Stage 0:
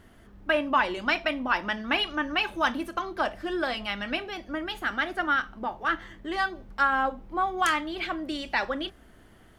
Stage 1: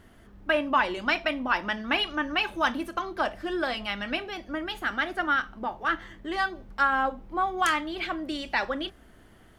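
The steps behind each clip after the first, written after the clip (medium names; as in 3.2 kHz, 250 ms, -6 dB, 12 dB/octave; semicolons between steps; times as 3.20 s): no audible change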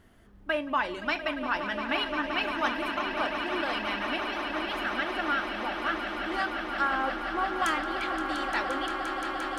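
echo with a slow build-up 174 ms, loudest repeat 8, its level -11 dB; trim -4.5 dB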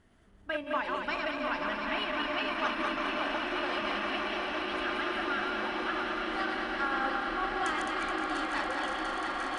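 backward echo that repeats 106 ms, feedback 76%, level -3.5 dB; shuffle delay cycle 1174 ms, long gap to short 1.5:1, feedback 53%, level -9 dB; trim -6 dB; Vorbis 64 kbps 22.05 kHz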